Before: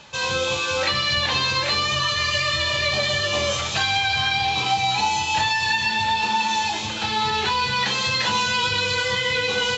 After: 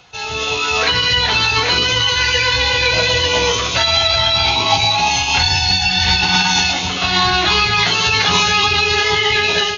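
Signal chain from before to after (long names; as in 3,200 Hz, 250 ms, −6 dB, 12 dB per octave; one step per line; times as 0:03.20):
automatic gain control gain up to 11.5 dB
phase-vocoder pitch shift with formants kept −3 semitones
level −1 dB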